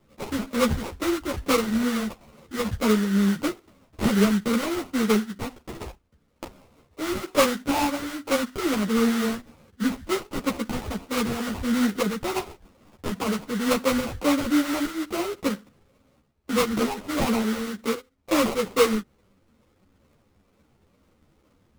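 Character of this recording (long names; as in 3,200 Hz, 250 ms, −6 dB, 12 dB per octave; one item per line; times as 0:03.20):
phaser sweep stages 8, 2.2 Hz, lowest notch 770–3,000 Hz
aliases and images of a low sample rate 1,700 Hz, jitter 20%
a shimmering, thickened sound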